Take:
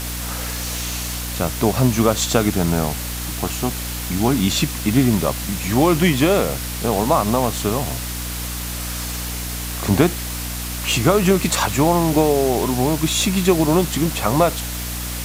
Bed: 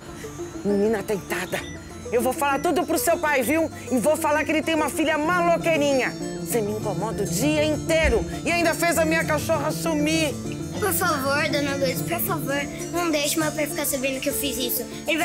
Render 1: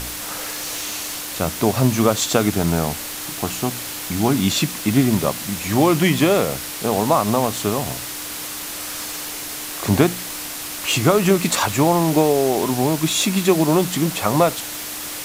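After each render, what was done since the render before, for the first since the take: de-hum 60 Hz, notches 4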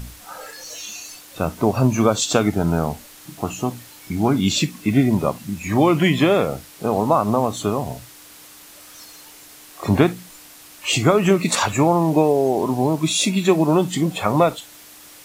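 noise print and reduce 14 dB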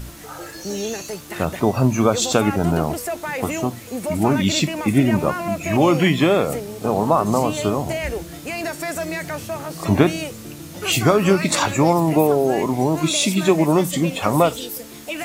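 add bed -6 dB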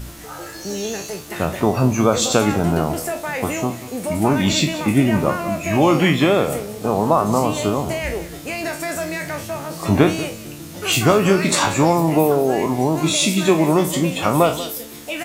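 spectral trails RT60 0.32 s; echo 0.188 s -15.5 dB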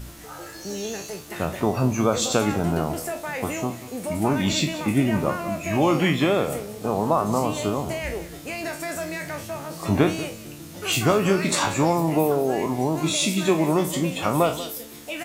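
gain -5 dB

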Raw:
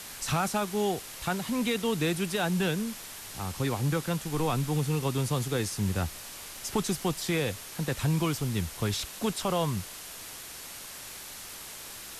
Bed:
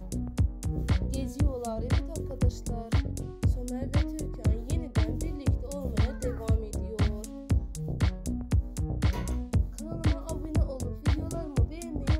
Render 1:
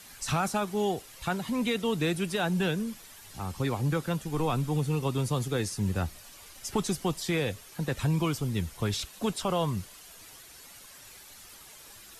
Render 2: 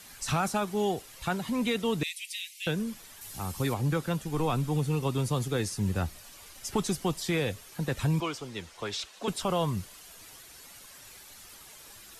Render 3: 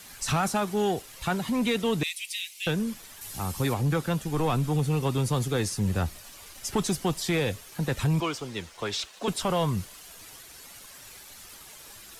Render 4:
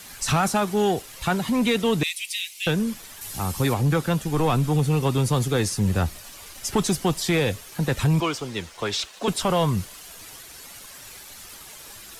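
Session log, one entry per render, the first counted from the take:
denoiser 10 dB, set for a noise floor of -43 dBFS
2.03–2.67 steep high-pass 2000 Hz 96 dB/oct; 3.21–3.74 high shelf 7700 Hz +11.5 dB; 8.2–9.28 three-band isolator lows -16 dB, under 330 Hz, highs -16 dB, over 7700 Hz
sample leveller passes 1
gain +4.5 dB

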